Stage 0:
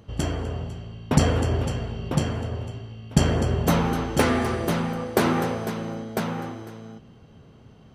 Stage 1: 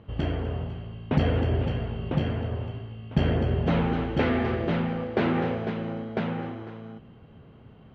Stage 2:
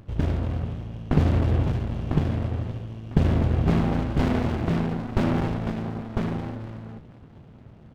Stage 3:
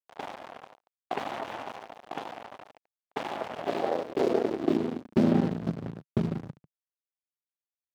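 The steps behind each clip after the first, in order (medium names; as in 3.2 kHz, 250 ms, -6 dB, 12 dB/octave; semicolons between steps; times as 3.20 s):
low-pass 3.2 kHz 24 dB/octave; dynamic bell 1.1 kHz, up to -6 dB, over -43 dBFS, Q 1.9; in parallel at +3 dB: peak limiter -16.5 dBFS, peak gain reduction 10.5 dB; on the sum: trim -8 dB
frequency-shifting echo 469 ms, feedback 42%, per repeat +46 Hz, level -22 dB; sliding maximum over 65 samples; trim +4 dB
coarse spectral quantiser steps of 30 dB; hysteresis with a dead band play -20.5 dBFS; high-pass sweep 770 Hz -> 150 Hz, 3.35–5.82 s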